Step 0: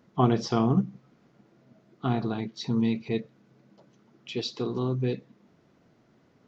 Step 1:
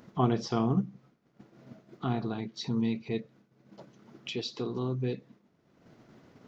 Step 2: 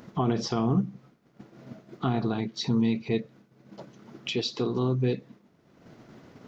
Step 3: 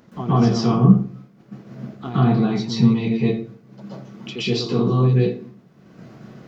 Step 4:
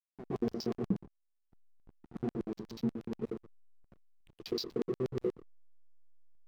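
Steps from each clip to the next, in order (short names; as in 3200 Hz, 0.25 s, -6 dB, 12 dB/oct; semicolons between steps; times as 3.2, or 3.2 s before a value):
expander -49 dBFS; upward compressor, threshold -28 dBFS; gain -4 dB
limiter -21.5 dBFS, peak gain reduction 10 dB; gain +6 dB
reverb RT60 0.45 s, pre-delay 0.116 s, DRR -10 dB; gain -4 dB
LFO band-pass square 8.3 Hz 380–5100 Hz; backlash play -31 dBFS; gain -7.5 dB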